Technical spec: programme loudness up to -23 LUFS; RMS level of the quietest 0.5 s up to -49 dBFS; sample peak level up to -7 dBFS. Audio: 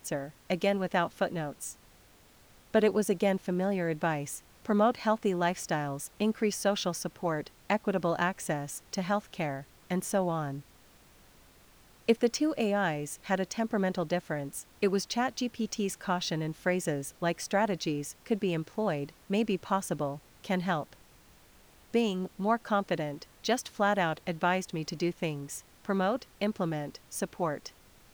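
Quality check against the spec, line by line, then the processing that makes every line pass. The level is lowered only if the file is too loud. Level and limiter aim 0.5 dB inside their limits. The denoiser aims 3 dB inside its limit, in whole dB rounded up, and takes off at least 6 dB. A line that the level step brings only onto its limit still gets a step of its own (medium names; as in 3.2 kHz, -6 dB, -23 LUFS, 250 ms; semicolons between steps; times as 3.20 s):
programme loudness -31.5 LUFS: pass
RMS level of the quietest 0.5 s -59 dBFS: pass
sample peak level -11.5 dBFS: pass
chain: none needed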